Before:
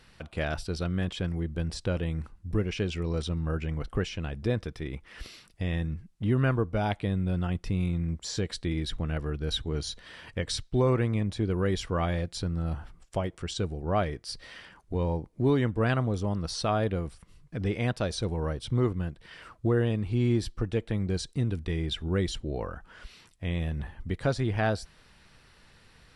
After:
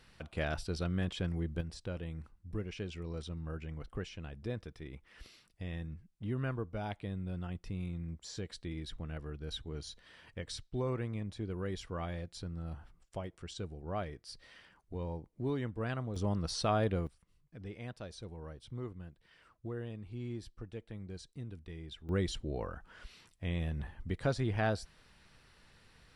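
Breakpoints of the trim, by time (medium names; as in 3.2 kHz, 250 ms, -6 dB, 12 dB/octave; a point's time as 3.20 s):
-4.5 dB
from 1.61 s -11 dB
from 16.16 s -3.5 dB
from 17.07 s -16 dB
from 22.09 s -5 dB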